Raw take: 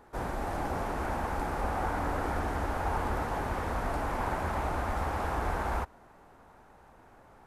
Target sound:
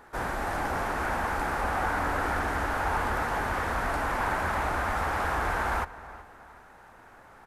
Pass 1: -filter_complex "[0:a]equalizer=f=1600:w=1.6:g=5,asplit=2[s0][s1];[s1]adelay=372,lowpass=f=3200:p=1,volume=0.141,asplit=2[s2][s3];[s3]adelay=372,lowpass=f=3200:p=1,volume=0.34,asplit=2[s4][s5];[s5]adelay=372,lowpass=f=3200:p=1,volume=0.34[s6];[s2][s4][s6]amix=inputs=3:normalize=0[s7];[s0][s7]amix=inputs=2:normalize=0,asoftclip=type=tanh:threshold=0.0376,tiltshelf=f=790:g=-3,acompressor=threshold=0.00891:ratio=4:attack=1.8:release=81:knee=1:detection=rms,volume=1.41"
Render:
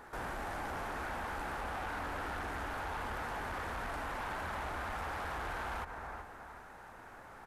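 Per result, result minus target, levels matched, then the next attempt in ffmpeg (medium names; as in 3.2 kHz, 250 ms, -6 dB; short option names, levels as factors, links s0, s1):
compression: peak gain reduction +9.5 dB; saturation: distortion +12 dB
-filter_complex "[0:a]equalizer=f=1600:w=1.6:g=5,asplit=2[s0][s1];[s1]adelay=372,lowpass=f=3200:p=1,volume=0.141,asplit=2[s2][s3];[s3]adelay=372,lowpass=f=3200:p=1,volume=0.34,asplit=2[s4][s5];[s5]adelay=372,lowpass=f=3200:p=1,volume=0.34[s6];[s2][s4][s6]amix=inputs=3:normalize=0[s7];[s0][s7]amix=inputs=2:normalize=0,asoftclip=type=tanh:threshold=0.0376,tiltshelf=f=790:g=-3,volume=1.41"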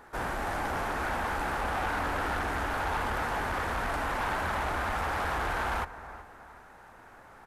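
saturation: distortion +12 dB
-filter_complex "[0:a]equalizer=f=1600:w=1.6:g=5,asplit=2[s0][s1];[s1]adelay=372,lowpass=f=3200:p=1,volume=0.141,asplit=2[s2][s3];[s3]adelay=372,lowpass=f=3200:p=1,volume=0.34,asplit=2[s4][s5];[s5]adelay=372,lowpass=f=3200:p=1,volume=0.34[s6];[s2][s4][s6]amix=inputs=3:normalize=0[s7];[s0][s7]amix=inputs=2:normalize=0,asoftclip=type=tanh:threshold=0.106,tiltshelf=f=790:g=-3,volume=1.41"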